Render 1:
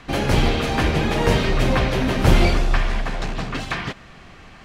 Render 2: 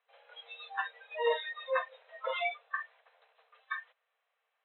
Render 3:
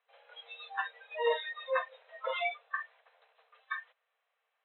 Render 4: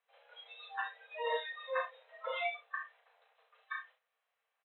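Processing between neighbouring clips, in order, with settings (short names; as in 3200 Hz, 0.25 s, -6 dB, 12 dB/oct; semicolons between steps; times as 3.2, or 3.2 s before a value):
spectral noise reduction 30 dB; FFT band-pass 440–4100 Hz; gain -5 dB
nothing audible
early reflections 33 ms -4.5 dB, 65 ms -9 dB; gain -5 dB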